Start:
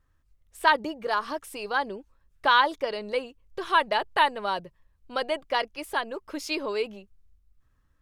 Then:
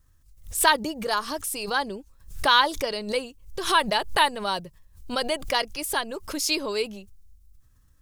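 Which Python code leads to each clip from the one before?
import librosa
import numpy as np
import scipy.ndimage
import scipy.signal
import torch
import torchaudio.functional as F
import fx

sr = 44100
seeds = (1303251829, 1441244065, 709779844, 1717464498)

y = fx.bass_treble(x, sr, bass_db=7, treble_db=15)
y = fx.pre_swell(y, sr, db_per_s=120.0)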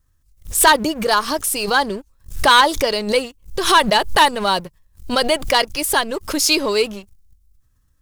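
y = fx.leveller(x, sr, passes=2)
y = F.gain(torch.from_numpy(y), 2.0).numpy()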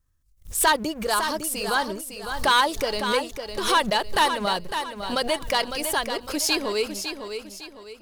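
y = fx.echo_feedback(x, sr, ms=555, feedback_pct=37, wet_db=-8)
y = F.gain(torch.from_numpy(y), -7.5).numpy()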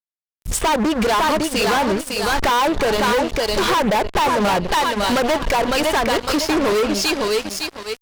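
y = fx.env_lowpass_down(x, sr, base_hz=890.0, full_db=-18.0)
y = fx.fuzz(y, sr, gain_db=34.0, gate_db=-43.0)
y = F.gain(torch.from_numpy(y), -2.0).numpy()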